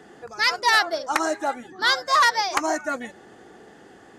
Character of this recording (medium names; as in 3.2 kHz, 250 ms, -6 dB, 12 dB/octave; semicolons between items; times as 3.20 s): noise floor -50 dBFS; spectral tilt -0.5 dB/octave